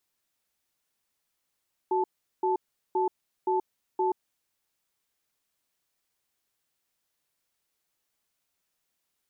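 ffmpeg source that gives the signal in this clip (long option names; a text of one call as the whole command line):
ffmpeg -f lavfi -i "aevalsrc='0.0531*(sin(2*PI*372*t)+sin(2*PI*876*t))*clip(min(mod(t,0.52),0.13-mod(t,0.52))/0.005,0,1)':duration=2.43:sample_rate=44100" out.wav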